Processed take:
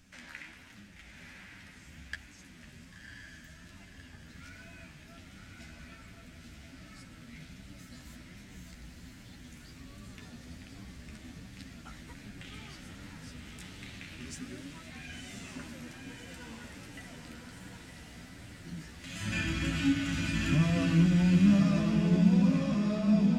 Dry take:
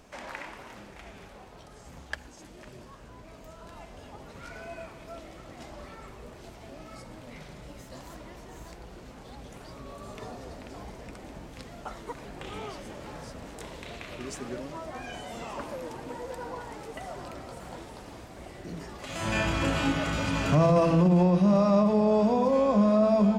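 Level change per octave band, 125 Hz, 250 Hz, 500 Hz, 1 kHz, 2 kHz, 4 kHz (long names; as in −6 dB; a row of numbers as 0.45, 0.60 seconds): −0.5, −1.5, −15.5, −14.5, −2.0, −1.5 decibels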